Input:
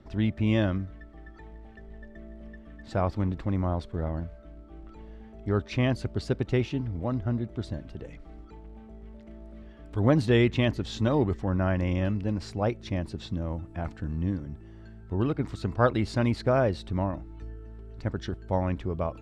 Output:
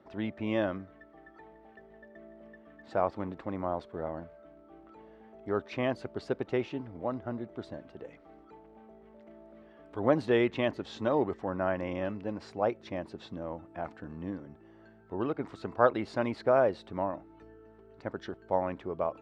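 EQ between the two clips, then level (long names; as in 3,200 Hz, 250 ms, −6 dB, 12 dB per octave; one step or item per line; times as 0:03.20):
high-pass filter 650 Hz 12 dB per octave
spectral tilt −4.5 dB per octave
+1.0 dB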